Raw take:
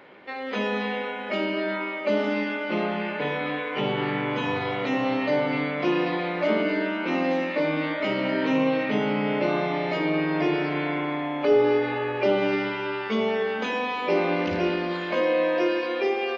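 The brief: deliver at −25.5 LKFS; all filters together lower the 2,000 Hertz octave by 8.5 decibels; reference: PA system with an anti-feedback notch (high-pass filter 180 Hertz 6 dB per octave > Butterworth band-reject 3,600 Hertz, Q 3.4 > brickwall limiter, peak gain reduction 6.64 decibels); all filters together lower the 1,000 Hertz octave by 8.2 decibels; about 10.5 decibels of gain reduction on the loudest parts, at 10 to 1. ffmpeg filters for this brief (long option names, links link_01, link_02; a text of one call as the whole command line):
ffmpeg -i in.wav -af "equalizer=frequency=1000:width_type=o:gain=-9,equalizer=frequency=2000:width_type=o:gain=-8,acompressor=threshold=-27dB:ratio=10,highpass=frequency=180:poles=1,asuperstop=centerf=3600:order=8:qfactor=3.4,volume=9dB,alimiter=limit=-16.5dB:level=0:latency=1" out.wav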